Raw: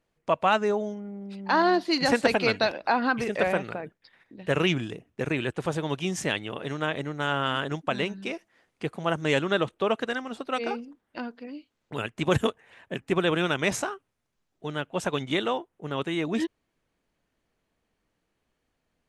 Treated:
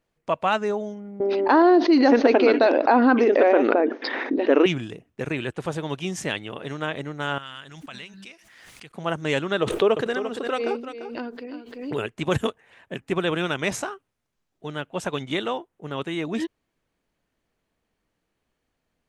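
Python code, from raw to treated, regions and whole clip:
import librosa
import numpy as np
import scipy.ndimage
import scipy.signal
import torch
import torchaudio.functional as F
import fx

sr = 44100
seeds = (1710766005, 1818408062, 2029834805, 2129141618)

y = fx.chain(x, sr, fx.brickwall_bandpass(low_hz=240.0, high_hz=6600.0),
    fx.tilt_eq(slope=-4.5),
    fx.env_flatten(amount_pct=70), at=(1.2, 4.66))
y = fx.chain(y, sr, fx.tone_stack(knobs='5-5-5'),
    fx.pre_swell(db_per_s=32.0), at=(7.38, 8.94))
y = fx.chain(y, sr, fx.peak_eq(hz=410.0, db=9.5, octaves=0.5),
    fx.echo_single(ms=344, db=-10.5),
    fx.pre_swell(db_per_s=63.0), at=(9.62, 12.15))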